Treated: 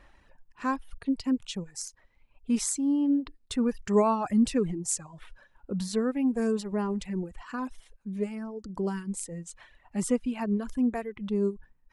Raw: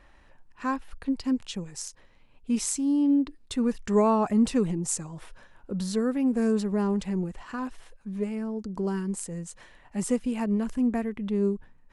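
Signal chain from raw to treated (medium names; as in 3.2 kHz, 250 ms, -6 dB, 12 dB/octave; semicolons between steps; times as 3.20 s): reverb removal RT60 1.5 s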